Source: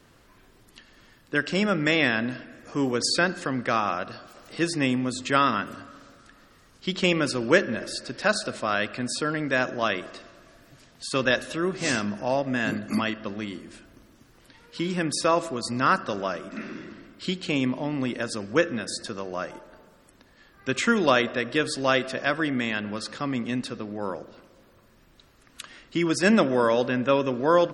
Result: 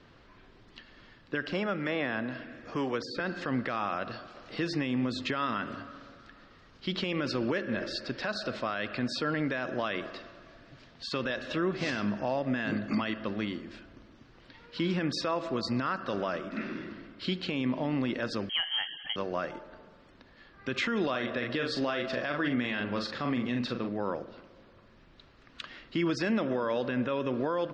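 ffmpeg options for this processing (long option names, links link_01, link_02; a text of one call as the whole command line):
ffmpeg -i in.wav -filter_complex "[0:a]asettb=1/sr,asplit=3[link_01][link_02][link_03];[link_01]atrim=end=1.474[link_04];[link_02]atrim=start=1.47:end=3.2,asetpts=PTS-STARTPTS,afade=type=in:duration=0.004:curve=qsin,afade=type=out:start_time=1.726:duration=0.004:curve=qsin,acrossover=split=470|1500[link_05][link_06][link_07];[link_05]acompressor=threshold=-35dB:ratio=4[link_08];[link_06]acompressor=threshold=-32dB:ratio=4[link_09];[link_07]acompressor=threshold=-40dB:ratio=4[link_10];[link_08][link_09][link_10]amix=inputs=3:normalize=0[link_11];[link_03]atrim=start=3.196[link_12];[link_04][link_11]acrossfade=duration=0.004:curve1=hsin:curve2=qsin[link_13];[link_13][link_12]acrossfade=duration=0.004:curve1=qsin:curve2=hsin,asettb=1/sr,asplit=3[link_14][link_15][link_16];[link_14]atrim=end=18.494[link_17];[link_15]atrim=start=18.49:end=19.16,asetpts=PTS-STARTPTS,afade=type=in:duration=0.004:curve=qsin,afade=type=out:start_time=0.666:duration=0.004:curve=qsin,lowpass=frequency=2900:width_type=q:width=0.5098,lowpass=frequency=2900:width_type=q:width=0.6013,lowpass=frequency=2900:width_type=q:width=0.9,lowpass=frequency=2900:width_type=q:width=2.563,afreqshift=-3400[link_18];[link_16]atrim=start=19.156[link_19];[link_17][link_18]acrossfade=duration=0.004:curve1=hsin:curve2=qsin[link_20];[link_20][link_19]acrossfade=duration=0.004:curve1=qsin:curve2=hsin,asettb=1/sr,asplit=3[link_21][link_22][link_23];[link_21]atrim=end=21.104[link_24];[link_22]atrim=start=21.1:end=23.89,asetpts=PTS-STARTPTS,afade=type=in:duration=0.004:curve=qsin,afade=type=out:start_time=2.786:duration=0.004:curve=qsin,asplit=2[link_25][link_26];[link_26]adelay=41,volume=-6dB[link_27];[link_25][link_27]amix=inputs=2:normalize=0,atrim=end_sample=123039[link_28];[link_23]atrim=start=23.886[link_29];[link_24][link_28]acrossfade=duration=0.004:curve1=hsin:curve2=qsin[link_30];[link_30][link_29]acrossfade=duration=0.004:curve1=qsin:curve2=hsin,lowpass=frequency=4700:width=0.5412,lowpass=frequency=4700:width=1.3066,acompressor=threshold=-23dB:ratio=6,alimiter=limit=-20.5dB:level=0:latency=1:release=27" out.wav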